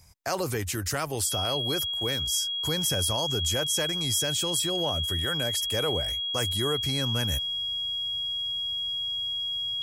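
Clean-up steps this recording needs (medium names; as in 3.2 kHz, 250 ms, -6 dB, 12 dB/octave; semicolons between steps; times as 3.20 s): clip repair -17 dBFS; band-stop 3.3 kHz, Q 30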